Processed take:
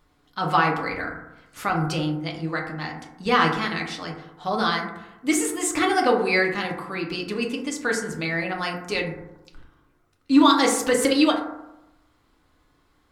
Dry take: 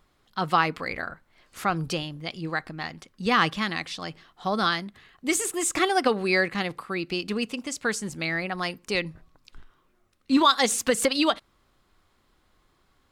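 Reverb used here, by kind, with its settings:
feedback delay network reverb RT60 0.91 s, low-frequency decay 1.05×, high-frequency decay 0.3×, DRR −0.5 dB
level −1 dB

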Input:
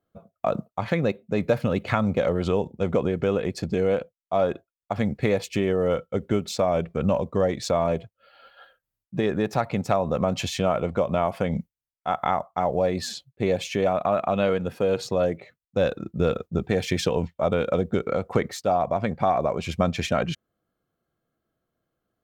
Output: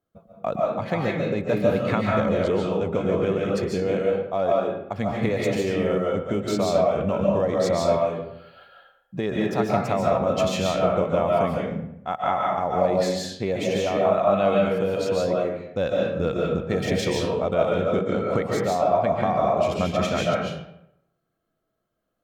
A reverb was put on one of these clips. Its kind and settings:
comb and all-pass reverb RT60 0.79 s, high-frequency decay 0.65×, pre-delay 105 ms, DRR −3 dB
level −3 dB

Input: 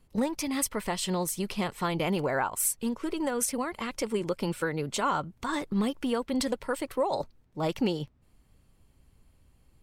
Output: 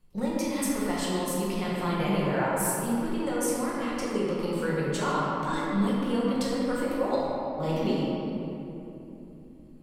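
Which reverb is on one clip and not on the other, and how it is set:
rectangular room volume 150 cubic metres, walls hard, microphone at 0.94 metres
level −6.5 dB

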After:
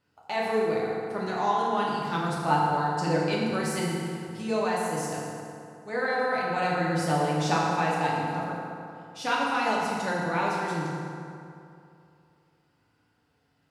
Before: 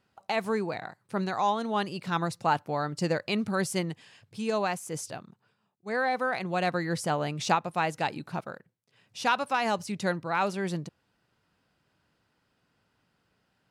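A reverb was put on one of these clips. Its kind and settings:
feedback delay network reverb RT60 2.6 s, high-frequency decay 0.6×, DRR −6 dB
level −5 dB

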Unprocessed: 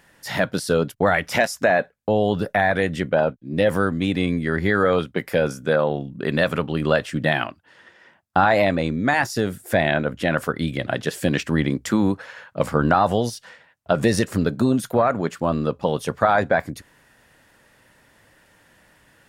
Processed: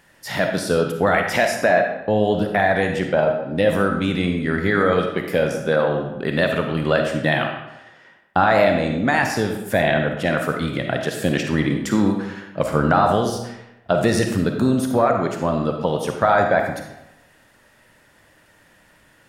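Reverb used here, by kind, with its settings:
comb and all-pass reverb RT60 0.92 s, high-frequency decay 0.75×, pre-delay 10 ms, DRR 3.5 dB

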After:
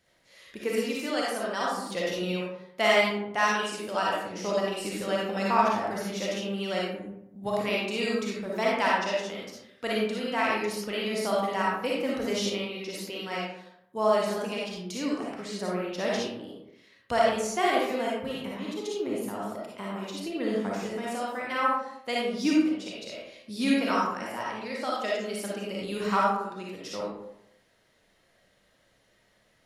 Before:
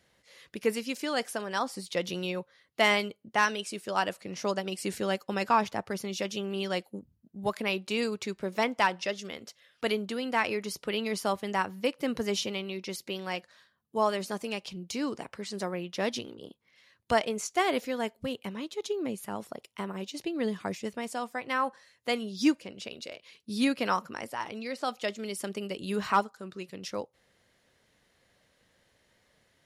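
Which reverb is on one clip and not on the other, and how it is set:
comb and all-pass reverb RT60 0.8 s, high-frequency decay 0.5×, pre-delay 15 ms, DRR −5 dB
level −3.5 dB

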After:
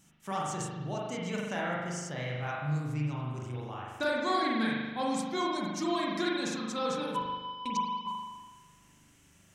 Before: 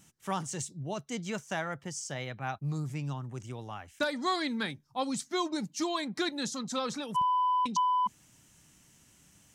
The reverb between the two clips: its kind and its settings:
spring reverb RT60 1.3 s, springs 40 ms, chirp 75 ms, DRR −4 dB
level −3.5 dB

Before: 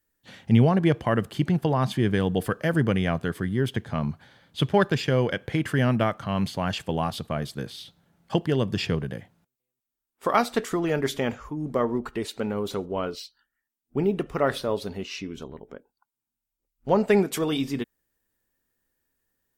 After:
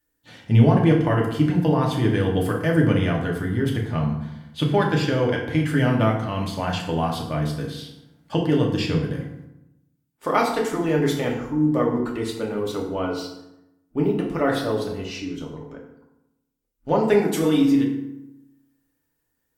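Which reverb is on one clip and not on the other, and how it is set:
feedback delay network reverb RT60 0.88 s, low-frequency decay 1.3×, high-frequency decay 0.65×, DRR −1.5 dB
level −1.5 dB

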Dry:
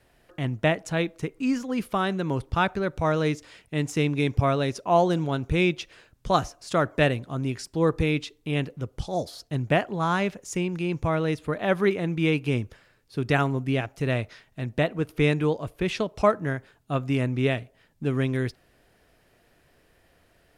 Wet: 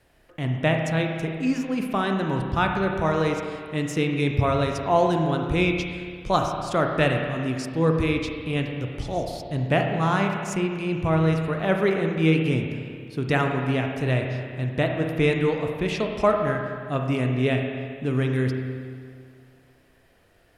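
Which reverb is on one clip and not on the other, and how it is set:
spring reverb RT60 2.1 s, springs 31/56 ms, chirp 60 ms, DRR 2.5 dB

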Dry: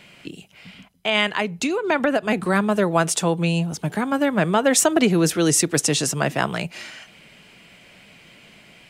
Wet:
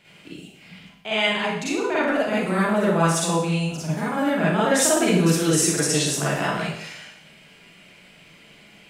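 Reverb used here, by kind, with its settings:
four-comb reverb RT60 0.71 s, DRR −8.5 dB
level −10 dB

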